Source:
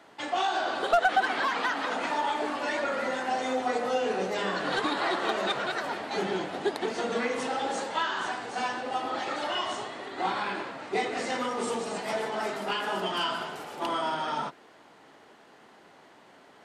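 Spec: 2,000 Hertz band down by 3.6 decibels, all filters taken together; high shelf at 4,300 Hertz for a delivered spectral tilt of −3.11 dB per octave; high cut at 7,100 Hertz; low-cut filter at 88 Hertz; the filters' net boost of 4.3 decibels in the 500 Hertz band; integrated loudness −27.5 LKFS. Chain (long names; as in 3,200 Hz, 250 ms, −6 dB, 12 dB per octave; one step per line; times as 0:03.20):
high-pass filter 88 Hz
low-pass filter 7,100 Hz
parametric band 500 Hz +5.5 dB
parametric band 2,000 Hz −7 dB
high-shelf EQ 4,300 Hz +8 dB
level +0.5 dB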